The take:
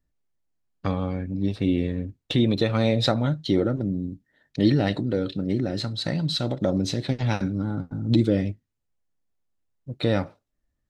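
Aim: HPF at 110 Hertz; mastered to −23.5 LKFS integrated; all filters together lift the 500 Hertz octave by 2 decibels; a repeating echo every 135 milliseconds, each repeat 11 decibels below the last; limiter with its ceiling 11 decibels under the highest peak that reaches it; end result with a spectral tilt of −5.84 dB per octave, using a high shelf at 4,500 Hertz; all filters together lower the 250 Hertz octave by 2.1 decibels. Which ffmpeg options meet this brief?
ffmpeg -i in.wav -af "highpass=110,equalizer=frequency=250:width_type=o:gain=-3.5,equalizer=frequency=500:width_type=o:gain=3.5,highshelf=frequency=4500:gain=-4,alimiter=limit=-19.5dB:level=0:latency=1,aecho=1:1:135|270|405:0.282|0.0789|0.0221,volume=6.5dB" out.wav

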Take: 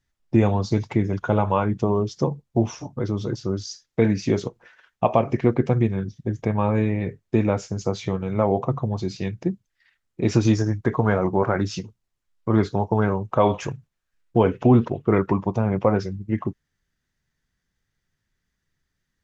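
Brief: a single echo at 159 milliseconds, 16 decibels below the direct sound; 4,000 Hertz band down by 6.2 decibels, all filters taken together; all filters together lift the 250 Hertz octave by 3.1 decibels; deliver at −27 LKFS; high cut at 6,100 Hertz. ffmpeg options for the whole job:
ffmpeg -i in.wav -af "lowpass=6100,equalizer=frequency=250:width_type=o:gain=4,equalizer=frequency=4000:width_type=o:gain=-7,aecho=1:1:159:0.158,volume=-5.5dB" out.wav

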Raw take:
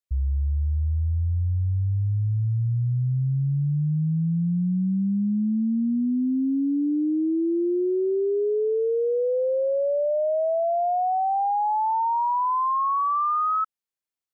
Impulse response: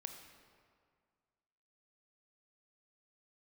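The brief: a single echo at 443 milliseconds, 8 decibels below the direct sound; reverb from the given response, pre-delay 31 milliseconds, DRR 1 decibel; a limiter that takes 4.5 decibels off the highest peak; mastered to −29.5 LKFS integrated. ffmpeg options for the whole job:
-filter_complex "[0:a]alimiter=level_in=0.5dB:limit=-24dB:level=0:latency=1,volume=-0.5dB,aecho=1:1:443:0.398,asplit=2[link_01][link_02];[1:a]atrim=start_sample=2205,adelay=31[link_03];[link_02][link_03]afir=irnorm=-1:irlink=0,volume=2.5dB[link_04];[link_01][link_04]amix=inputs=2:normalize=0,volume=-4dB"

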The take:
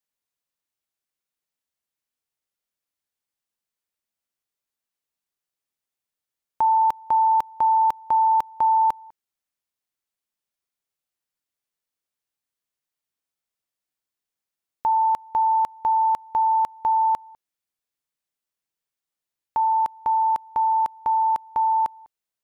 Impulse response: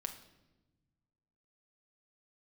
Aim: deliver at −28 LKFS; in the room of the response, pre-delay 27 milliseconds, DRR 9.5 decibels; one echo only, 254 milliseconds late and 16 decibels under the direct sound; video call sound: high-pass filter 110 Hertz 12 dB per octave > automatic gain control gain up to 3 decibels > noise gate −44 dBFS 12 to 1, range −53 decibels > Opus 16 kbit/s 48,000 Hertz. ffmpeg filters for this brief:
-filter_complex "[0:a]aecho=1:1:254:0.158,asplit=2[link_01][link_02];[1:a]atrim=start_sample=2205,adelay=27[link_03];[link_02][link_03]afir=irnorm=-1:irlink=0,volume=-8dB[link_04];[link_01][link_04]amix=inputs=2:normalize=0,highpass=110,dynaudnorm=maxgain=3dB,agate=range=-53dB:threshold=-44dB:ratio=12,volume=-9.5dB" -ar 48000 -c:a libopus -b:a 16k

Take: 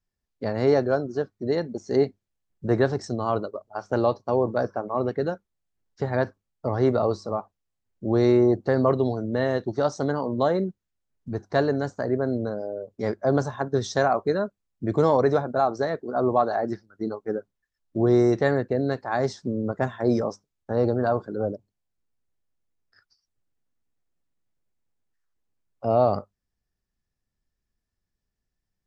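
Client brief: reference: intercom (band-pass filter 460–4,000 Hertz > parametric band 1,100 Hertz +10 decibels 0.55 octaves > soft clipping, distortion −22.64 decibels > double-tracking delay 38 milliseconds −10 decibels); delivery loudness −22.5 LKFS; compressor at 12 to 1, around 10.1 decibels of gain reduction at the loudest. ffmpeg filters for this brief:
ffmpeg -i in.wav -filter_complex "[0:a]acompressor=threshold=-25dB:ratio=12,highpass=460,lowpass=4000,equalizer=frequency=1100:width_type=o:width=0.55:gain=10,asoftclip=threshold=-16.5dB,asplit=2[link_01][link_02];[link_02]adelay=38,volume=-10dB[link_03];[link_01][link_03]amix=inputs=2:normalize=0,volume=11dB" out.wav

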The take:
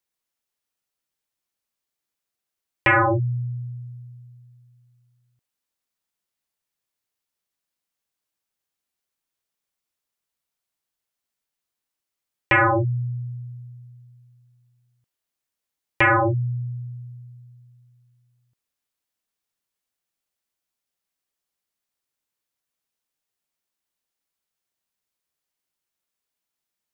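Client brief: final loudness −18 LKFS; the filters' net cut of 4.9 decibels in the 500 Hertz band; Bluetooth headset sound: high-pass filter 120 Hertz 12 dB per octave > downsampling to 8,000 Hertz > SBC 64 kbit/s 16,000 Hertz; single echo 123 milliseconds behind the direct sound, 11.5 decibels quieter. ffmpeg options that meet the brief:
ffmpeg -i in.wav -af "highpass=120,equalizer=frequency=500:width_type=o:gain=-6.5,aecho=1:1:123:0.266,aresample=8000,aresample=44100,volume=5dB" -ar 16000 -c:a sbc -b:a 64k out.sbc

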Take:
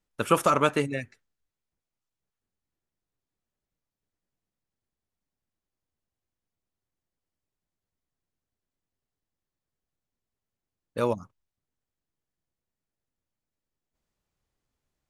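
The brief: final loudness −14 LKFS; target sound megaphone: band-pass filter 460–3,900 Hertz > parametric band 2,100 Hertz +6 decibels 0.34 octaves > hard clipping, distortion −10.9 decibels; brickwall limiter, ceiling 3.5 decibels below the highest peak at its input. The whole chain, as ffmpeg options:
ffmpeg -i in.wav -af "alimiter=limit=-11.5dB:level=0:latency=1,highpass=460,lowpass=3900,equalizer=frequency=2100:width_type=o:width=0.34:gain=6,asoftclip=type=hard:threshold=-21dB,volume=16.5dB" out.wav

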